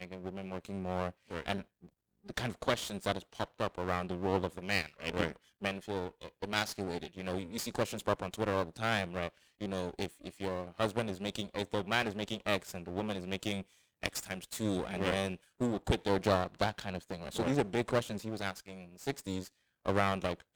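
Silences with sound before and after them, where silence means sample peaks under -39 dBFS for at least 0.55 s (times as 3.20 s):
1.62–2.29 s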